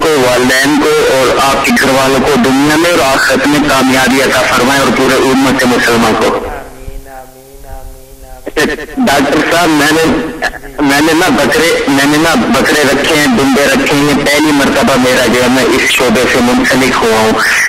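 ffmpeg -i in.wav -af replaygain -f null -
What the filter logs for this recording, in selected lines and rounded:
track_gain = -8.4 dB
track_peak = 0.586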